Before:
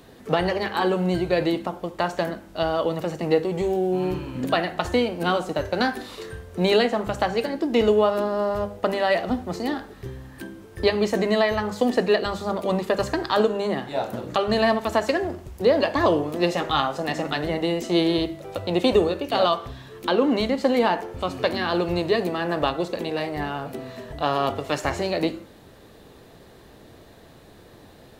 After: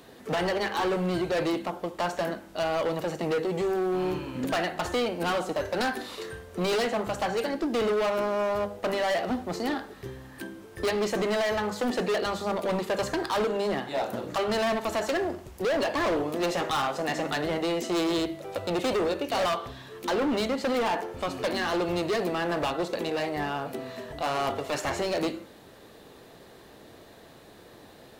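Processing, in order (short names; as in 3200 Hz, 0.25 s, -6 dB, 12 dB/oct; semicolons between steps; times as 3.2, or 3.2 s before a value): low shelf 150 Hz -10 dB; overloaded stage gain 23.5 dB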